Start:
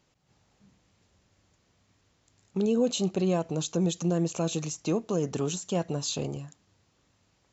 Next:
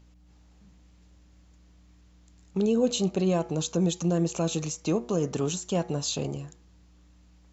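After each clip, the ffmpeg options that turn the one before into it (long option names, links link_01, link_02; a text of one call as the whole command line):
ffmpeg -i in.wav -af "aeval=exprs='val(0)+0.00158*(sin(2*PI*60*n/s)+sin(2*PI*2*60*n/s)/2+sin(2*PI*3*60*n/s)/3+sin(2*PI*4*60*n/s)/4+sin(2*PI*5*60*n/s)/5)':channel_layout=same,bandreject=frequency=120.3:width_type=h:width=4,bandreject=frequency=240.6:width_type=h:width=4,bandreject=frequency=360.9:width_type=h:width=4,bandreject=frequency=481.2:width_type=h:width=4,bandreject=frequency=601.5:width_type=h:width=4,bandreject=frequency=721.8:width_type=h:width=4,bandreject=frequency=842.1:width_type=h:width=4,bandreject=frequency=962.4:width_type=h:width=4,bandreject=frequency=1082.7:width_type=h:width=4,bandreject=frequency=1203:width_type=h:width=4,bandreject=frequency=1323.3:width_type=h:width=4,bandreject=frequency=1443.6:width_type=h:width=4,bandreject=frequency=1563.9:width_type=h:width=4,bandreject=frequency=1684.2:width_type=h:width=4,bandreject=frequency=1804.5:width_type=h:width=4,bandreject=frequency=1924.8:width_type=h:width=4,bandreject=frequency=2045.1:width_type=h:width=4,bandreject=frequency=2165.4:width_type=h:width=4,bandreject=frequency=2285.7:width_type=h:width=4,bandreject=frequency=2406:width_type=h:width=4,volume=1.5dB" out.wav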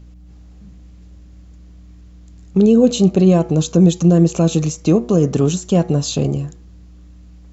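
ffmpeg -i in.wav -af "lowshelf=frequency=450:gain=10,bandreject=frequency=900:width=10,volume=6dB" out.wav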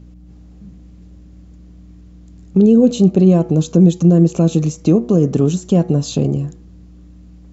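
ffmpeg -i in.wav -filter_complex "[0:a]equalizer=frequency=230:width=0.44:gain=8,asplit=2[link_01][link_02];[link_02]acompressor=threshold=-14dB:ratio=6,volume=-3dB[link_03];[link_01][link_03]amix=inputs=2:normalize=0,volume=-7.5dB" out.wav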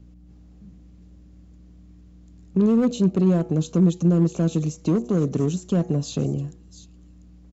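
ffmpeg -i in.wav -filter_complex "[0:a]acrossover=split=290|3200[link_01][link_02][link_03];[link_02]asoftclip=type=hard:threshold=-15.5dB[link_04];[link_03]aecho=1:1:694:0.266[link_05];[link_01][link_04][link_05]amix=inputs=3:normalize=0,volume=-7.5dB" out.wav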